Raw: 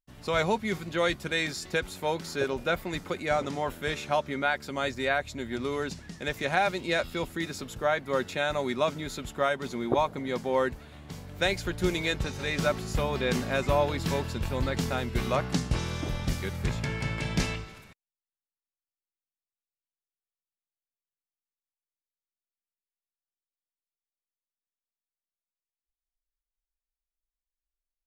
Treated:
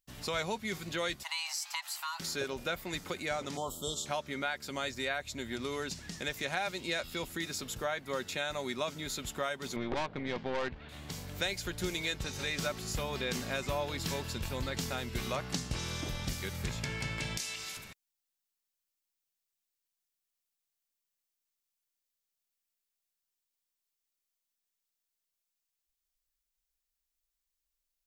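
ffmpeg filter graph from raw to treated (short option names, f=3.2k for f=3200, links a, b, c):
-filter_complex "[0:a]asettb=1/sr,asplit=3[a][b][c];[a]atrim=end=1.234[d];[b]atrim=start=1.23:end=2.2,asetpts=PTS-STARTPTS,afade=t=in:d=0.004:c=qsin,afade=t=out:st=0.966:d=0.004:c=qsin,highpass=480,afreqshift=490,acompressor=threshold=-34dB:ratio=2:attack=3.2:release=140:knee=1:detection=peak[e];[c]atrim=start=2.196[f];[d][e]acrossfade=d=0.004:c1=hsin:c2=qsin[g];[g][f]acrossfade=d=0.004:c1=qsin:c2=hsin,asettb=1/sr,asplit=3[h][i][j];[h]atrim=end=3.574[k];[i]atrim=start=3.57:end=4.06,asetpts=PTS-STARTPTS,afade=t=in:d=0.004:c=qsin,afade=t=out:st=0.486:d=0.004:c=qsin,asuperstop=centerf=2000:order=20:qfactor=1.2,equalizer=f=7.7k:t=o:w=0.26:g=12[l];[j]atrim=start=4.056[m];[k][l]acrossfade=d=0.004:c1=hsin:c2=qsin[n];[n][m]acrossfade=d=0.004:c1=qsin:c2=hsin,asettb=1/sr,asplit=3[o][p][q];[o]atrim=end=9.764[r];[p]atrim=start=9.76:end=10.89,asetpts=PTS-STARTPTS,afade=t=in:d=0.004:c=qsin,afade=t=out:st=1.126:d=0.004:c=qsin,lowpass=f=3.4k:w=0.5412,lowpass=f=3.4k:w=1.3066,acontrast=73,aeval=exprs='(tanh(10*val(0)+0.7)-tanh(0.7))/10':c=same[s];[q]atrim=start=10.886[t];[r][s]acrossfade=d=0.004:c1=hsin:c2=qsin[u];[u][t]acrossfade=d=0.004:c1=qsin:c2=hsin,asettb=1/sr,asplit=3[v][w][x];[v]atrim=end=17.374[y];[w]atrim=start=17.37:end=17.77,asetpts=PTS-STARTPTS,afade=t=in:d=0.004:c=qsin,afade=t=out:st=0.396:d=0.004:c=qsin,lowpass=11k,aemphasis=mode=production:type=riaa,acompressor=threshold=-40dB:ratio=2.5:attack=3.2:release=140:knee=1:detection=peak[z];[x]atrim=start=17.766[aa];[y][z]acrossfade=d=0.004:c1=hsin:c2=qsin[ab];[ab][aa]acrossfade=d=0.004:c1=qsin:c2=hsin,highshelf=f=2.6k:g=10.5,acompressor=threshold=-39dB:ratio=2,equalizer=f=9.7k:t=o:w=0.21:g=-3.5"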